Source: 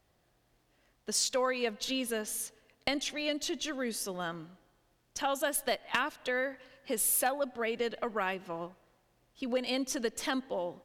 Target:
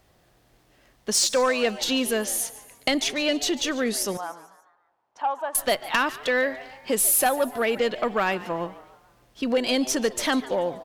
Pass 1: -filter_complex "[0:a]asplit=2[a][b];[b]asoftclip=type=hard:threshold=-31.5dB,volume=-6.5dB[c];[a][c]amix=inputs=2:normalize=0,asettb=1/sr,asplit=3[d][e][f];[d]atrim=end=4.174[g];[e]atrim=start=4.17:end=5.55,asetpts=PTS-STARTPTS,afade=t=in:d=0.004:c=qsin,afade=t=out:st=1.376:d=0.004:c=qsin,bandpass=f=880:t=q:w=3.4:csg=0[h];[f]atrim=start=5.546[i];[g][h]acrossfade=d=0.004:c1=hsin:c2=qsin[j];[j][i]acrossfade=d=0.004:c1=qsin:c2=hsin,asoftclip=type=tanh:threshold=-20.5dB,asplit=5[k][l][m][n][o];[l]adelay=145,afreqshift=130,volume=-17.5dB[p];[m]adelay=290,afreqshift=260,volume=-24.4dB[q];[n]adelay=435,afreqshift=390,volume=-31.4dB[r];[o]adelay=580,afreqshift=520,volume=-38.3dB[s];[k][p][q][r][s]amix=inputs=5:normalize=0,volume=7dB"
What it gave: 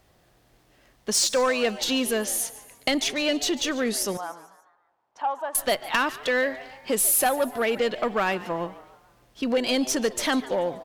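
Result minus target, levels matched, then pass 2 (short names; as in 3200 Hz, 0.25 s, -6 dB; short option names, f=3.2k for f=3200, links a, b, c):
hard clip: distortion +22 dB
-filter_complex "[0:a]asplit=2[a][b];[b]asoftclip=type=hard:threshold=-19.5dB,volume=-6.5dB[c];[a][c]amix=inputs=2:normalize=0,asettb=1/sr,asplit=3[d][e][f];[d]atrim=end=4.174[g];[e]atrim=start=4.17:end=5.55,asetpts=PTS-STARTPTS,afade=t=in:d=0.004:c=qsin,afade=t=out:st=1.376:d=0.004:c=qsin,bandpass=f=880:t=q:w=3.4:csg=0[h];[f]atrim=start=5.546[i];[g][h]acrossfade=d=0.004:c1=hsin:c2=qsin[j];[j][i]acrossfade=d=0.004:c1=qsin:c2=hsin,asoftclip=type=tanh:threshold=-20.5dB,asplit=5[k][l][m][n][o];[l]adelay=145,afreqshift=130,volume=-17.5dB[p];[m]adelay=290,afreqshift=260,volume=-24.4dB[q];[n]adelay=435,afreqshift=390,volume=-31.4dB[r];[o]adelay=580,afreqshift=520,volume=-38.3dB[s];[k][p][q][r][s]amix=inputs=5:normalize=0,volume=7dB"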